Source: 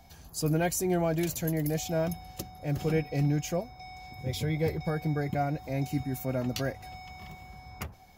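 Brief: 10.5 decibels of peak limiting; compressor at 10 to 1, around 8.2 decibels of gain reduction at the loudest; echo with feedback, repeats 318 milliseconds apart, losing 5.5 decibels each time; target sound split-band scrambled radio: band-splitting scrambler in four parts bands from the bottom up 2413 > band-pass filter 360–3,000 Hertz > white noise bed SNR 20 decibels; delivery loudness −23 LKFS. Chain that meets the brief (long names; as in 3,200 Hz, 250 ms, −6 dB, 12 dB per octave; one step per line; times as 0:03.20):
downward compressor 10 to 1, threshold −31 dBFS
brickwall limiter −32 dBFS
repeating echo 318 ms, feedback 53%, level −5.5 dB
band-splitting scrambler in four parts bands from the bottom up 2413
band-pass filter 360–3,000 Hz
white noise bed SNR 20 dB
level +17.5 dB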